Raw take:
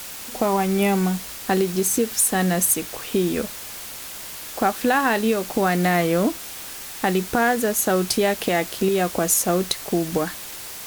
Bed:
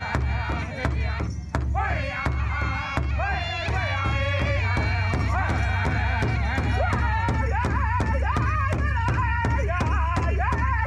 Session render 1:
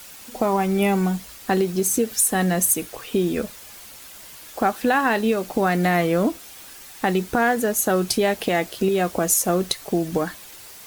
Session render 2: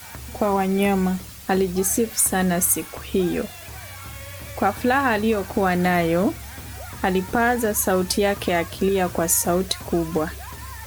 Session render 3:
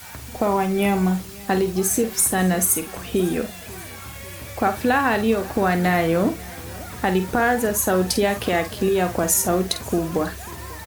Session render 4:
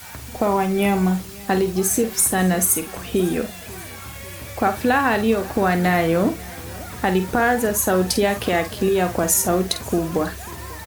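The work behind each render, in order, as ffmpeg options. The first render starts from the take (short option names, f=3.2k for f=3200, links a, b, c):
-af "afftdn=nr=8:nf=-36"
-filter_complex "[1:a]volume=-14dB[a];[0:a][a]amix=inputs=2:normalize=0"
-filter_complex "[0:a]asplit=2[a][b];[b]adelay=49,volume=-10dB[c];[a][c]amix=inputs=2:normalize=0,aecho=1:1:542|1084|1626|2168:0.0794|0.0469|0.0277|0.0163"
-af "volume=1dB"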